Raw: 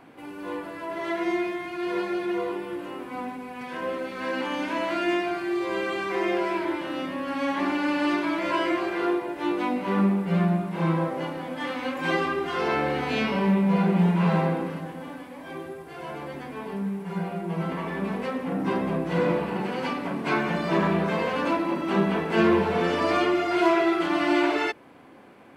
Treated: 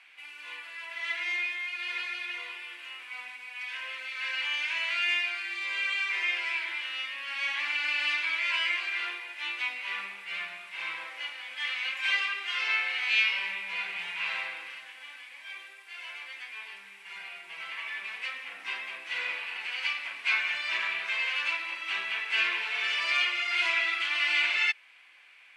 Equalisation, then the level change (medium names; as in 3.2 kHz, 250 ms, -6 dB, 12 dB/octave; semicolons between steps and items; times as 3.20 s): resonant high-pass 2.4 kHz, resonance Q 2.8; low-pass 9.2 kHz 12 dB/octave; 0.0 dB